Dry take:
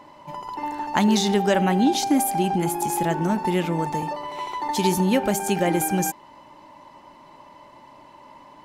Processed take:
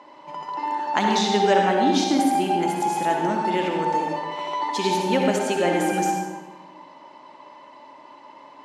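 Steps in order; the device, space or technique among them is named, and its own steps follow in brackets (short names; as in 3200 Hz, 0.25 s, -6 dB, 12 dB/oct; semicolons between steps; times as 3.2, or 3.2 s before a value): supermarket ceiling speaker (BPF 300–6000 Hz; reverb RT60 1.2 s, pre-delay 55 ms, DRR 1 dB)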